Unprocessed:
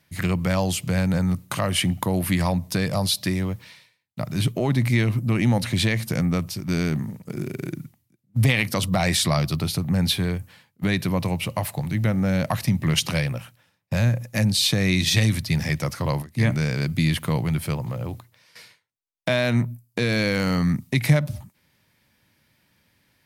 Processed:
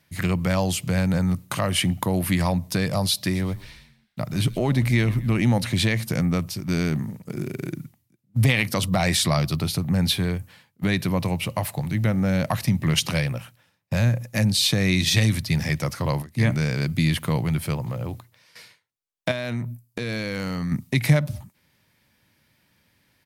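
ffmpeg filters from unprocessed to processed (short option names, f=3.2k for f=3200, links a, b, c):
-filter_complex "[0:a]asplit=3[a][b][c];[a]afade=t=out:st=3.33:d=0.02[d];[b]asplit=5[e][f][g][h][i];[f]adelay=126,afreqshift=-80,volume=-19dB[j];[g]adelay=252,afreqshift=-160,volume=-25.2dB[k];[h]adelay=378,afreqshift=-240,volume=-31.4dB[l];[i]adelay=504,afreqshift=-320,volume=-37.6dB[m];[e][j][k][l][m]amix=inputs=5:normalize=0,afade=t=in:st=3.33:d=0.02,afade=t=out:st=5.4:d=0.02[n];[c]afade=t=in:st=5.4:d=0.02[o];[d][n][o]amix=inputs=3:normalize=0,asettb=1/sr,asplit=3[p][q][r];[p]atrim=end=19.314[s];[q]atrim=start=19.31:end=20.72,asetpts=PTS-STARTPTS,afade=t=in:d=0.004:c=qsin,afade=t=out:st=1.406:d=0.004:c=qsin,acompressor=threshold=-24dB:ratio=6:attack=3.2:release=140:knee=1:detection=peak[t];[r]atrim=start=20.716[u];[s][t]acrossfade=d=0.004:c1=hsin:c2=qsin[v];[v][u]acrossfade=d=0.004:c1=qsin:c2=hsin"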